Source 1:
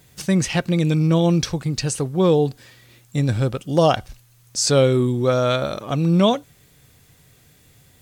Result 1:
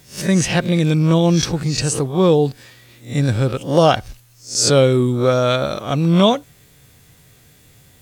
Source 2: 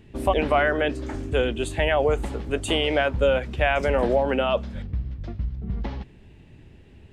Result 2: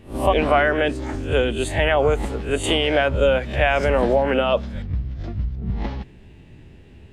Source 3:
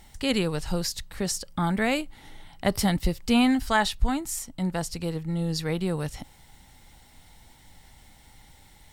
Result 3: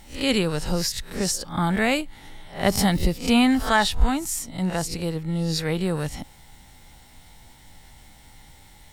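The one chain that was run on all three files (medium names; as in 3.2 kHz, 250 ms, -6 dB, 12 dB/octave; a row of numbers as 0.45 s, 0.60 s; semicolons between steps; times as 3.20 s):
reverse spectral sustain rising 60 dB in 0.33 s; trim +2.5 dB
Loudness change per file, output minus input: +3.0 LU, +3.5 LU, +3.5 LU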